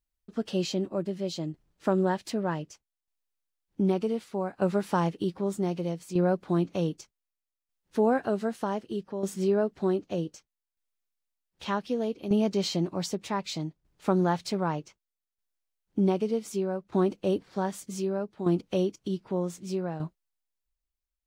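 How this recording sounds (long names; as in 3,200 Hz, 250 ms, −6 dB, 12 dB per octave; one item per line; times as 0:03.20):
tremolo saw down 0.65 Hz, depth 65%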